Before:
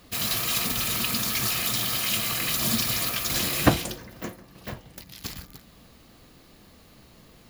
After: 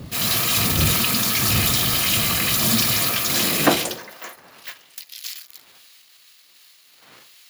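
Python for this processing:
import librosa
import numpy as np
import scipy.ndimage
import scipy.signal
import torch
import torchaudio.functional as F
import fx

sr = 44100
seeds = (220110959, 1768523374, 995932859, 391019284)

y = fx.dmg_wind(x, sr, seeds[0], corner_hz=120.0, level_db=-28.0)
y = fx.transient(y, sr, attack_db=-4, sustain_db=3)
y = fx.filter_sweep_highpass(y, sr, from_hz=88.0, to_hz=2600.0, start_s=3.06, end_s=4.85, q=0.81)
y = F.gain(torch.from_numpy(y), 6.5).numpy()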